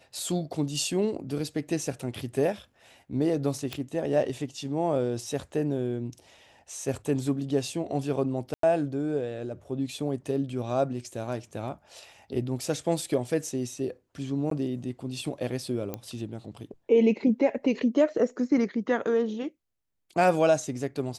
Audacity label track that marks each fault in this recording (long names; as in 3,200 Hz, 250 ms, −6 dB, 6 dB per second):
3.730000	3.730000	click −18 dBFS
8.540000	8.630000	drop-out 93 ms
14.500000	14.510000	drop-out 13 ms
15.940000	15.940000	click −18 dBFS